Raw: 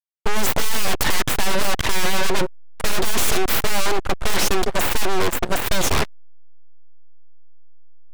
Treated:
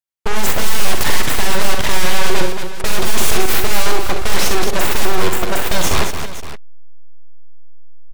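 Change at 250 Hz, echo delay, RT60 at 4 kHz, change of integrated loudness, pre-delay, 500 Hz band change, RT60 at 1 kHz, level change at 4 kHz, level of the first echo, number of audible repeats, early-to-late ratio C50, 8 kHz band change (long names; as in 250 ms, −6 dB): +3.0 dB, 44 ms, no reverb audible, +3.5 dB, no reverb audible, +3.0 dB, no reverb audible, +3.5 dB, −8.0 dB, 4, no reverb audible, +3.5 dB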